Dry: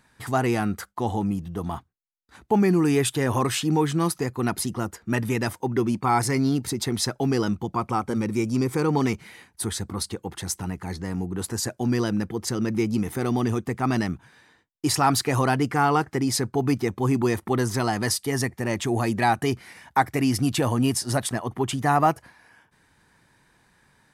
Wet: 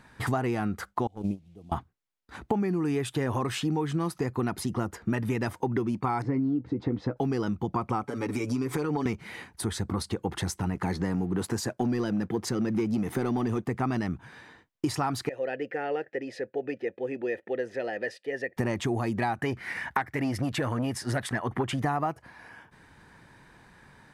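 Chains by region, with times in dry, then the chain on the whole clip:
0:01.07–0:01.72: linear delta modulator 64 kbit/s, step −41.5 dBFS + flat-topped bell 1,300 Hz −14.5 dB 1.3 octaves + noise gate −24 dBFS, range −26 dB
0:06.22–0:07.17: head-to-tape spacing loss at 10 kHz 42 dB + double-tracking delay 16 ms −11.5 dB + hollow resonant body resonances 290/490 Hz, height 12 dB, ringing for 90 ms
0:08.03–0:09.06: high-pass filter 310 Hz 6 dB per octave + downward compressor, threshold −30 dBFS + comb filter 7 ms, depth 72%
0:10.75–0:13.68: high-pass filter 110 Hz + leveller curve on the samples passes 1
0:15.29–0:18.57: formant filter e + low-shelf EQ 130 Hz −7 dB
0:19.39–0:21.82: parametric band 1,800 Hz +9 dB 0.86 octaves + saturating transformer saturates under 1,000 Hz
whole clip: downward compressor 12 to 1, threshold −32 dBFS; high-shelf EQ 4,200 Hz −10.5 dB; level +7.5 dB

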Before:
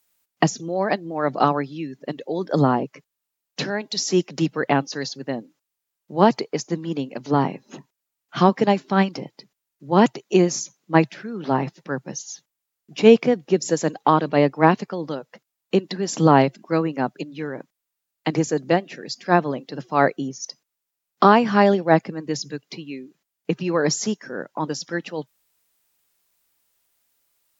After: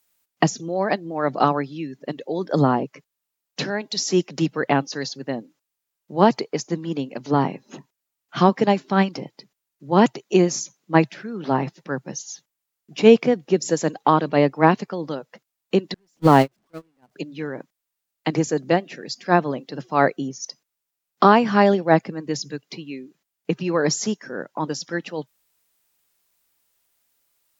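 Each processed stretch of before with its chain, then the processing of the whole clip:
0:15.94–0:17.16: converter with a step at zero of −22.5 dBFS + noise gate −14 dBFS, range −43 dB
whole clip: no processing

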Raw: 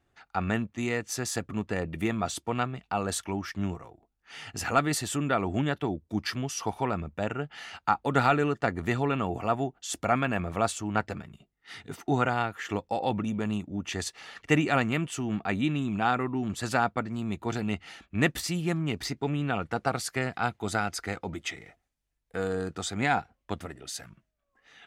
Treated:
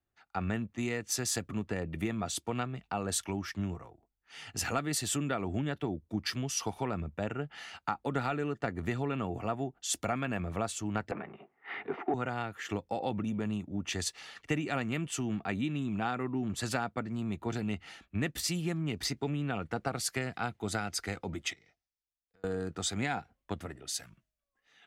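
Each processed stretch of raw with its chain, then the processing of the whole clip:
0:11.11–0:12.14: power curve on the samples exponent 0.7 + loudspeaker in its box 290–2,400 Hz, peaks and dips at 390 Hz +7 dB, 770 Hz +9 dB, 1,100 Hz +5 dB, 2,200 Hz +4 dB
0:21.53–0:22.44: transistor ladder low-pass 6,000 Hz, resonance 60% + downward compressor, threshold −55 dBFS
whole clip: dynamic equaliser 1,000 Hz, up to −4 dB, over −40 dBFS, Q 0.88; downward compressor 6 to 1, threshold −29 dBFS; multiband upward and downward expander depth 40%

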